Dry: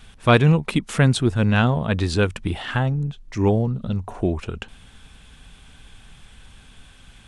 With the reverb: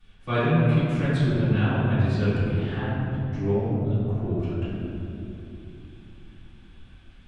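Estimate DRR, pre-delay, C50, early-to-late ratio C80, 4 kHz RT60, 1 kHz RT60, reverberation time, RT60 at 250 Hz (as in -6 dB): -17.5 dB, 3 ms, -4.0 dB, -2.0 dB, 1.5 s, 2.4 s, 2.8 s, 4.7 s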